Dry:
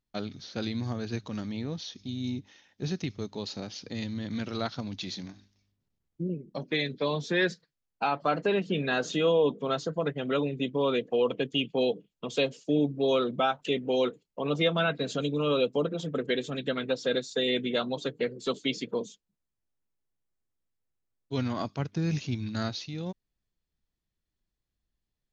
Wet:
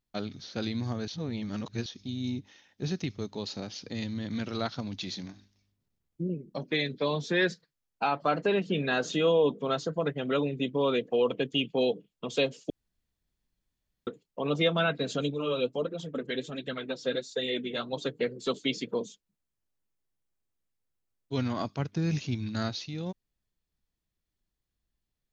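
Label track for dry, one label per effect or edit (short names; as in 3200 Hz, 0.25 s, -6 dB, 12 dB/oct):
1.080000	1.860000	reverse
12.700000	14.070000	room tone
15.300000	17.930000	flange 1.4 Hz, delay 0.6 ms, depth 7.4 ms, regen +26%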